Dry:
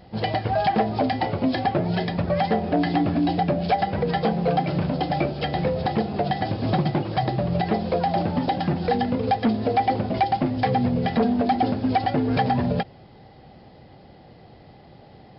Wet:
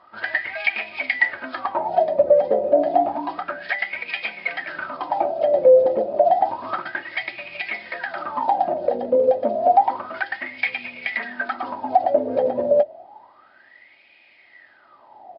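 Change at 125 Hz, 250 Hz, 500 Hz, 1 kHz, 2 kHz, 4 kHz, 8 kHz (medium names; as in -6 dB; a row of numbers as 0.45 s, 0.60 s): under -20 dB, -11.5 dB, +6.5 dB, +1.0 dB, +8.5 dB, -3.5 dB, no reading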